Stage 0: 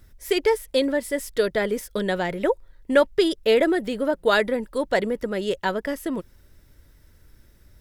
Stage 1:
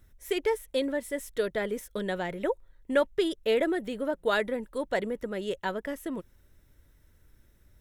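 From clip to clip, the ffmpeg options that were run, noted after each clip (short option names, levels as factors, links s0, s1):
-af "equalizer=f=4800:t=o:w=0.22:g=-9.5,volume=0.447"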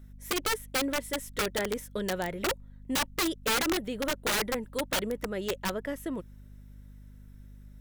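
-af "aeval=exprs='(mod(13.3*val(0)+1,2)-1)/13.3':c=same,aeval=exprs='val(0)+0.00398*(sin(2*PI*50*n/s)+sin(2*PI*2*50*n/s)/2+sin(2*PI*3*50*n/s)/3+sin(2*PI*4*50*n/s)/4+sin(2*PI*5*50*n/s)/5)':c=same"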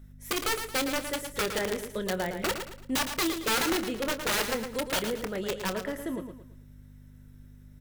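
-filter_complex "[0:a]asplit=2[s0][s1];[s1]adelay=27,volume=0.251[s2];[s0][s2]amix=inputs=2:normalize=0,asplit=2[s3][s4];[s4]aecho=0:1:112|224|336|448:0.398|0.139|0.0488|0.0171[s5];[s3][s5]amix=inputs=2:normalize=0"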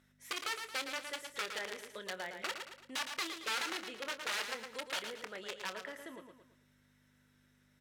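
-af "acompressor=threshold=0.00708:ratio=1.5,bandpass=f=2500:t=q:w=0.51:csg=0"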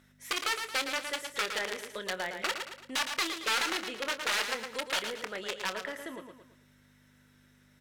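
-af "aeval=exprs='0.0668*(cos(1*acos(clip(val(0)/0.0668,-1,1)))-cos(1*PI/2))+0.00119*(cos(6*acos(clip(val(0)/0.0668,-1,1)))-cos(6*PI/2))':c=same,volume=2.24"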